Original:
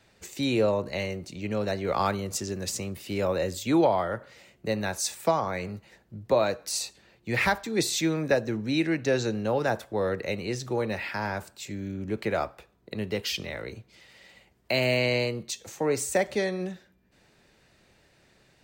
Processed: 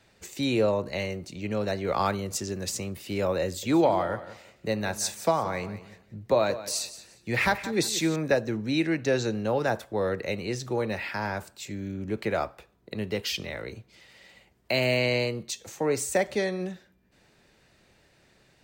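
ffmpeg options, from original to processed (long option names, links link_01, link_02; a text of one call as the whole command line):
ffmpeg -i in.wav -filter_complex "[0:a]asettb=1/sr,asplit=3[link_01][link_02][link_03];[link_01]atrim=end=3.454[link_04];[link_02]atrim=start=3.45:end=8.16,asetpts=PTS-STARTPTS,afade=type=in:duration=0.004:curve=qsin,afade=type=out:start_time=4.706:duration=0.004:curve=qsin,aecho=1:1:177|354|531:0.188|0.0471|0.0118,atrim=end_sample=207711[link_05];[link_03]atrim=start=8.156[link_06];[link_04][link_05]acrossfade=duration=0.004:curve1=hsin:curve2=qsin[link_07];[link_07][link_06]acrossfade=duration=0.004:curve1=qsin:curve2=hsin" out.wav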